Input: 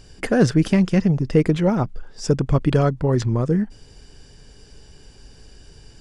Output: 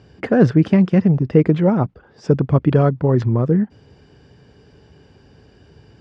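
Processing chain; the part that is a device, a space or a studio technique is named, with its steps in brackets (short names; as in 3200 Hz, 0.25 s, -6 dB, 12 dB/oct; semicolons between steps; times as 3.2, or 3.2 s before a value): HPF 76 Hz 24 dB/oct; phone in a pocket (LPF 3900 Hz 12 dB/oct; high shelf 2200 Hz -10 dB); gain +3.5 dB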